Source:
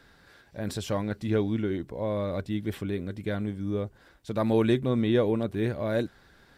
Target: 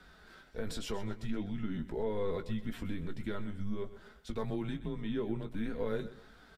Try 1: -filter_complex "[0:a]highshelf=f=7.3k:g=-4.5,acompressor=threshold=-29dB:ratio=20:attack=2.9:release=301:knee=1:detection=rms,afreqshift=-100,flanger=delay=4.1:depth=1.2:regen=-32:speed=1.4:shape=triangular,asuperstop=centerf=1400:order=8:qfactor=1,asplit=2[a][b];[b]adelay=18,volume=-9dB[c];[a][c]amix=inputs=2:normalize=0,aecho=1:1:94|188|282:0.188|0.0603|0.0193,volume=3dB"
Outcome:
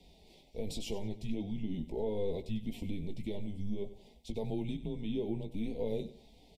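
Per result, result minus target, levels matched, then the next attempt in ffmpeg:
1000 Hz band -6.0 dB; echo 31 ms early
-filter_complex "[0:a]highshelf=f=7.3k:g=-4.5,acompressor=threshold=-29dB:ratio=20:attack=2.9:release=301:knee=1:detection=rms,afreqshift=-100,flanger=delay=4.1:depth=1.2:regen=-32:speed=1.4:shape=triangular,asplit=2[a][b];[b]adelay=18,volume=-9dB[c];[a][c]amix=inputs=2:normalize=0,aecho=1:1:94|188|282:0.188|0.0603|0.0193,volume=3dB"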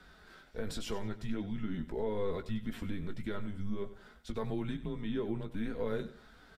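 echo 31 ms early
-filter_complex "[0:a]highshelf=f=7.3k:g=-4.5,acompressor=threshold=-29dB:ratio=20:attack=2.9:release=301:knee=1:detection=rms,afreqshift=-100,flanger=delay=4.1:depth=1.2:regen=-32:speed=1.4:shape=triangular,asplit=2[a][b];[b]adelay=18,volume=-9dB[c];[a][c]amix=inputs=2:normalize=0,aecho=1:1:125|250|375:0.188|0.0603|0.0193,volume=3dB"

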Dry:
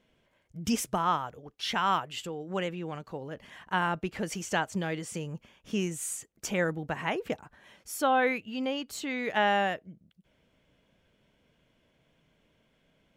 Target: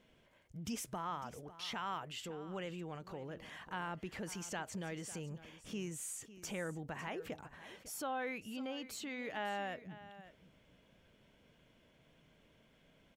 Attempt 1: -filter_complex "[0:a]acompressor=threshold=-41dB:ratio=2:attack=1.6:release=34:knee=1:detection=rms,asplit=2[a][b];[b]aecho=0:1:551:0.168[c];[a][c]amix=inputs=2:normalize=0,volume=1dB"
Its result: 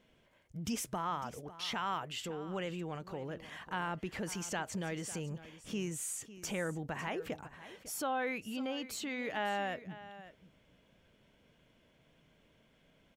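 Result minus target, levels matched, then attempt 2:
compressor: peak gain reduction -4.5 dB
-filter_complex "[0:a]acompressor=threshold=-50dB:ratio=2:attack=1.6:release=34:knee=1:detection=rms,asplit=2[a][b];[b]aecho=0:1:551:0.168[c];[a][c]amix=inputs=2:normalize=0,volume=1dB"

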